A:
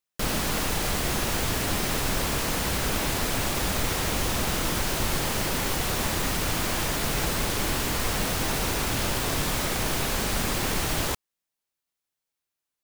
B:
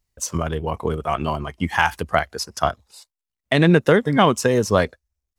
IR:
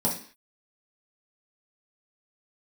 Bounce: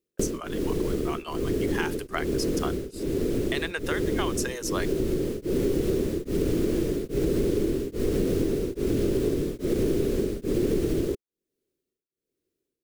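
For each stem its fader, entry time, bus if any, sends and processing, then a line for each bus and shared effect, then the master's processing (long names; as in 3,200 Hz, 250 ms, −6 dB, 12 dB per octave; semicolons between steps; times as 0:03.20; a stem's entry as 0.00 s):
−2.5 dB, 0.00 s, no send, low shelf with overshoot 570 Hz +13 dB, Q 3; tremolo along a rectified sine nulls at 1.2 Hz; automatic ducking −9 dB, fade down 0.50 s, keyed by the second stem
−7.5 dB, 0.00 s, no send, downward expander −47 dBFS; high-pass filter 1,200 Hz 12 dB per octave; high-shelf EQ 5,800 Hz +9.5 dB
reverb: not used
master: parametric band 410 Hz +6.5 dB 1.4 octaves; downward compressor 6 to 1, threshold −22 dBFS, peak gain reduction 12 dB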